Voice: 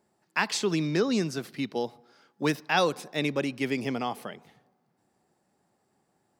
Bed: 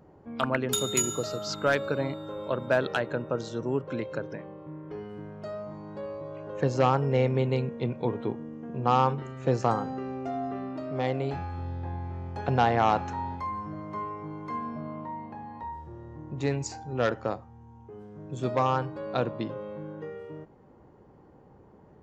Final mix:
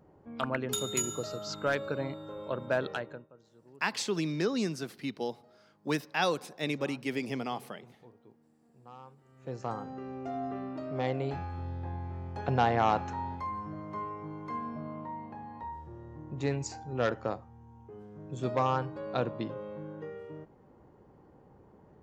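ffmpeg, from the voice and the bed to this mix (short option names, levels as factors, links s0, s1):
-filter_complex "[0:a]adelay=3450,volume=0.596[s0];[1:a]volume=9.44,afade=t=out:st=2.86:d=0.42:silence=0.0749894,afade=t=in:st=9.22:d=1.24:silence=0.0595662[s1];[s0][s1]amix=inputs=2:normalize=0"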